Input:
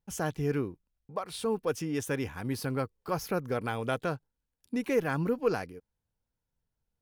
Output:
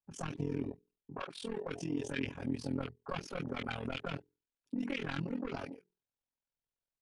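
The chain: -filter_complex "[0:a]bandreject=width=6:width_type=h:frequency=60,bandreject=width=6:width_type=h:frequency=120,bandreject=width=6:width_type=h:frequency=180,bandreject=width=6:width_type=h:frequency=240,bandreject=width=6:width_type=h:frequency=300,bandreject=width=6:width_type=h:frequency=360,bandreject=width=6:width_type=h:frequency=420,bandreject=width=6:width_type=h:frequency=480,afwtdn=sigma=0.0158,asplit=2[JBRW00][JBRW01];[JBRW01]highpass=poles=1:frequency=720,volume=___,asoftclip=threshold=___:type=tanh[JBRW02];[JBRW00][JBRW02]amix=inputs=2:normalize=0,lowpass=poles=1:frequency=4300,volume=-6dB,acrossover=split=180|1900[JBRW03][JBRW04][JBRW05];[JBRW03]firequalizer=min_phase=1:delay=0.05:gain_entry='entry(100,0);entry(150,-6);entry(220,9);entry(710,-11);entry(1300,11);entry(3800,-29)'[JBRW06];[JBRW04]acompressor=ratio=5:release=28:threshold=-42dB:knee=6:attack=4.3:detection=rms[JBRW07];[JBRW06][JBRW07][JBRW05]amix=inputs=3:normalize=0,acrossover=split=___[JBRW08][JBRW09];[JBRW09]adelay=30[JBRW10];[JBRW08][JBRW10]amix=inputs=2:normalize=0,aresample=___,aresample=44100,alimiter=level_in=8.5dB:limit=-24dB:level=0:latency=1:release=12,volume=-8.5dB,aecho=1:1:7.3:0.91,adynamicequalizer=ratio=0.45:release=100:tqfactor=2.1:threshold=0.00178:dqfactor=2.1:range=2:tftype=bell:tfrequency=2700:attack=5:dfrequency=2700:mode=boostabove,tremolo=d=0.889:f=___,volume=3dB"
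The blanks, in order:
15dB, -15.5dB, 1500, 22050, 42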